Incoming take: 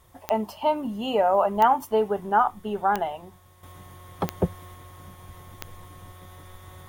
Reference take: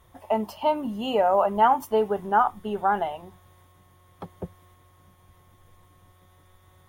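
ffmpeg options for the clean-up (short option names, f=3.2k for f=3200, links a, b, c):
-af "adeclick=t=4,agate=range=-21dB:threshold=-39dB,asetnsamples=n=441:p=0,asendcmd='3.63 volume volume -11.5dB',volume=0dB"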